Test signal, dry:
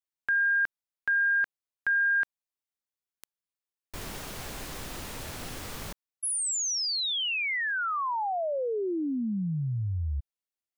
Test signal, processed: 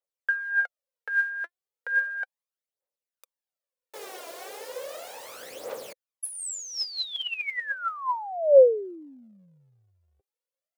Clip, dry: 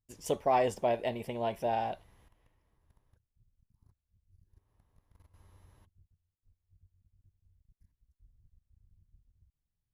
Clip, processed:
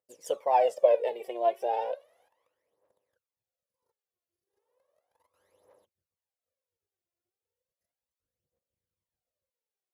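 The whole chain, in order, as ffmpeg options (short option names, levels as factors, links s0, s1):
-af "aphaser=in_gain=1:out_gain=1:delay=3:decay=0.7:speed=0.35:type=triangular,highpass=f=520:t=q:w=6,volume=0.501"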